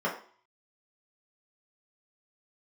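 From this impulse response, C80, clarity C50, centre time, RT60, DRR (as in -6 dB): 12.0 dB, 8.5 dB, 23 ms, 0.50 s, -6.0 dB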